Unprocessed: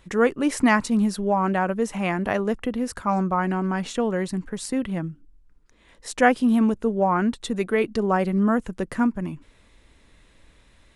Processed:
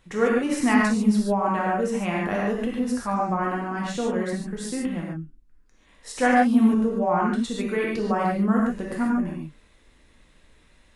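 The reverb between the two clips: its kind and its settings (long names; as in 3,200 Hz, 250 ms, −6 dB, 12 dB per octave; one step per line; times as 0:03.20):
reverb whose tail is shaped and stops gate 170 ms flat, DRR −3.5 dB
level −6 dB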